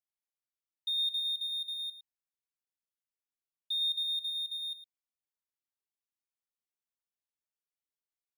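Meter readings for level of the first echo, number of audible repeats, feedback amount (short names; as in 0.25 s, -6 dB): -11.5 dB, 1, no steady repeat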